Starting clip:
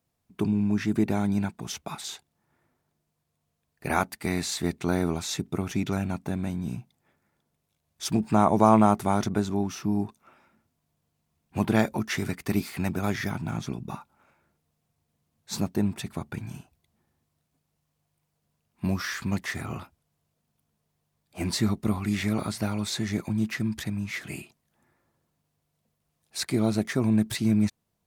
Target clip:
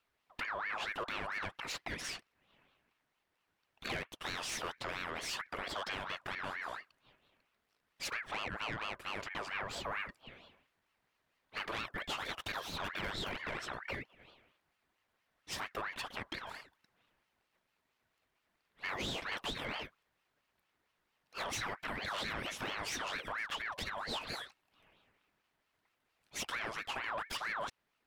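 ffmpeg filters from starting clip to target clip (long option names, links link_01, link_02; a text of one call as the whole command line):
ffmpeg -i in.wav -filter_complex "[0:a]acrossover=split=480 3400:gain=0.178 1 0.2[link_01][link_02][link_03];[link_01][link_02][link_03]amix=inputs=3:normalize=0,acompressor=threshold=-37dB:ratio=4,asoftclip=type=tanh:threshold=-38dB,aeval=exprs='val(0)*sin(2*PI*1400*n/s+1400*0.45/4.4*sin(2*PI*4.4*n/s))':channel_layout=same,volume=7.5dB" out.wav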